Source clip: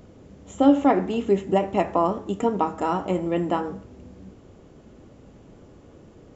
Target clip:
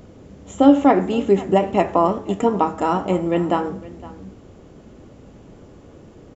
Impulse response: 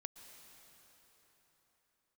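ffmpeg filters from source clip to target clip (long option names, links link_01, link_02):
-af "aecho=1:1:512:0.112,volume=4.5dB"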